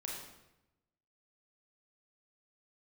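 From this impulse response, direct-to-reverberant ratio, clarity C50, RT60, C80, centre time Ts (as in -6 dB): -3.0 dB, 1.5 dB, 0.90 s, 4.0 dB, 59 ms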